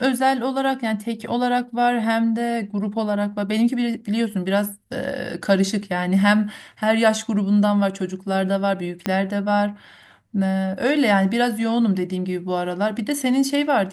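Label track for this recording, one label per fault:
9.060000	9.060000	click −8 dBFS

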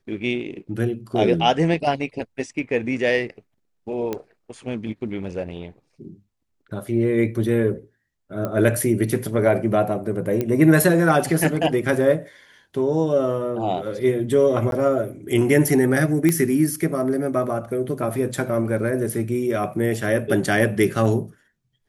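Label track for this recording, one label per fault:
4.130000	4.130000	click −13 dBFS
8.450000	8.450000	click −14 dBFS
10.410000	10.410000	click −11 dBFS
14.710000	14.720000	drop-out 12 ms
16.290000	16.290000	click −7 dBFS

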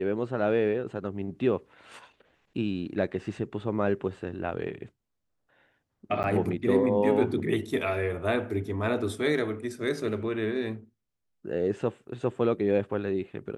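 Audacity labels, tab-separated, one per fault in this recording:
6.230000	6.240000	drop-out 9.6 ms

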